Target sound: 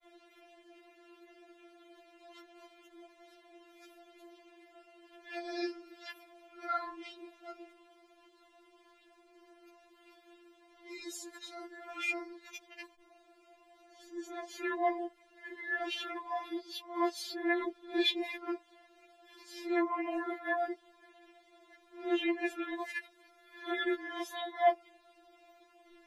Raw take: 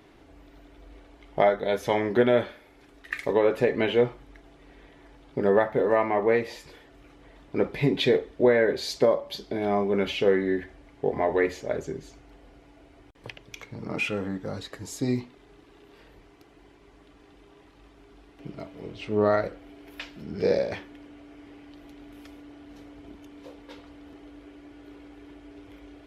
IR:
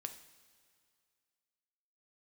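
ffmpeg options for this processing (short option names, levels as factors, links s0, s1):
-af "areverse,lowshelf=f=400:g=-4.5,afftfilt=real='re*4*eq(mod(b,16),0)':imag='im*4*eq(mod(b,16),0)':win_size=2048:overlap=0.75,volume=0.75"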